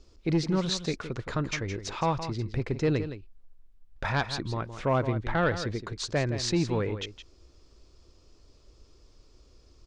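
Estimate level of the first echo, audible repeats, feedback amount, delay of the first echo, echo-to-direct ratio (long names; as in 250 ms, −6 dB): −11.0 dB, 1, repeats not evenly spaced, 166 ms, −11.0 dB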